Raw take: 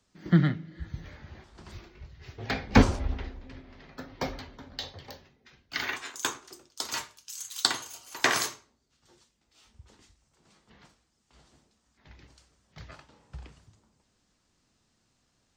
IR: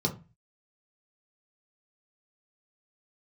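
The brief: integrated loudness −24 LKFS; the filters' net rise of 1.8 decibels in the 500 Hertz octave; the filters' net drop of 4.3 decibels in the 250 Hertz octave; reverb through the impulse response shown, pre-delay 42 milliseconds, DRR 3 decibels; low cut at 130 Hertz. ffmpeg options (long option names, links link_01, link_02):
-filter_complex "[0:a]highpass=130,equalizer=frequency=250:width_type=o:gain=-6,equalizer=frequency=500:width_type=o:gain=4,asplit=2[link_01][link_02];[1:a]atrim=start_sample=2205,adelay=42[link_03];[link_02][link_03]afir=irnorm=-1:irlink=0,volume=-10.5dB[link_04];[link_01][link_04]amix=inputs=2:normalize=0,volume=2dB"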